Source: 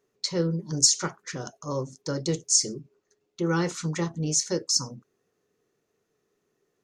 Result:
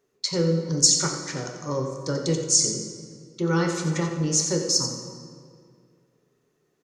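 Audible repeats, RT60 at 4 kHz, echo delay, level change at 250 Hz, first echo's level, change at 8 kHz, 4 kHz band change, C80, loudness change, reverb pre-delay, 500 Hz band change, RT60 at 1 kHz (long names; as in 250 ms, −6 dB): 1, 1.4 s, 89 ms, +3.5 dB, −9.5 dB, +3.0 dB, +3.0 dB, 5.5 dB, +2.5 dB, 6 ms, +4.0 dB, 2.0 s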